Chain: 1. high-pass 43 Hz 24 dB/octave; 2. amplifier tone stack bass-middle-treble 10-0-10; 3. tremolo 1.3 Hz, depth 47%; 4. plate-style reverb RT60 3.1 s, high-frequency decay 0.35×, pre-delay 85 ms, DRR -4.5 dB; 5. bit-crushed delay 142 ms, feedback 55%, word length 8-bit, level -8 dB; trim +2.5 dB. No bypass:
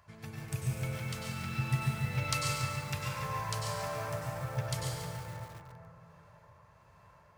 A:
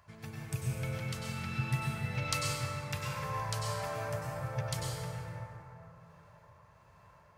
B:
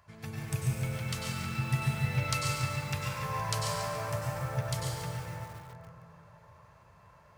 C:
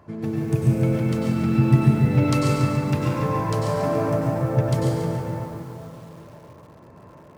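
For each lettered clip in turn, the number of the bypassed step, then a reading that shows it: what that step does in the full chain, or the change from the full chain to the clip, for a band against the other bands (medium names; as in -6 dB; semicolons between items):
5, momentary loudness spread change -1 LU; 3, loudness change +2.0 LU; 2, 250 Hz band +14.0 dB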